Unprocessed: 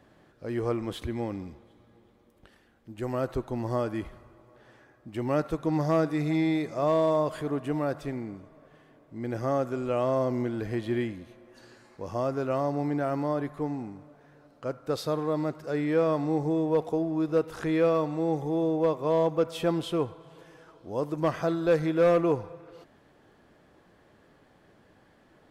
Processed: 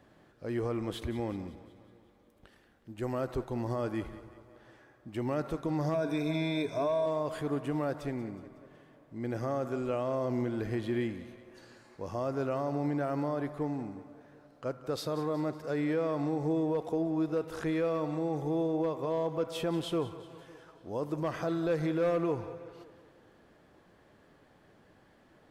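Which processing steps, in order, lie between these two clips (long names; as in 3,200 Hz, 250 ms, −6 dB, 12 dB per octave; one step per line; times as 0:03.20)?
0:05.94–0:07.06: EQ curve with evenly spaced ripples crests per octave 1.6, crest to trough 15 dB
brickwall limiter −21.5 dBFS, peak gain reduction 10 dB
echo with a time of its own for lows and highs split 340 Hz, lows 138 ms, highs 184 ms, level −15 dB
level −2 dB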